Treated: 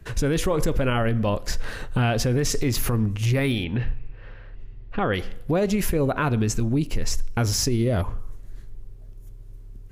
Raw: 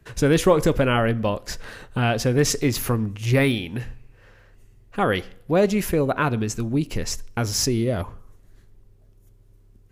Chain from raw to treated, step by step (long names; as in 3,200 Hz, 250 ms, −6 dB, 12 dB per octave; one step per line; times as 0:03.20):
0:03.64–0:05.14: low-pass filter 4,000 Hz 24 dB per octave
0:06.60–0:07.05: downward expander −27 dBFS
low-shelf EQ 68 Hz +11.5 dB
downward compressor 1.5 to 1, threshold −27 dBFS, peak gain reduction 6.5 dB
brickwall limiter −18.5 dBFS, peak gain reduction 8 dB
level +4.5 dB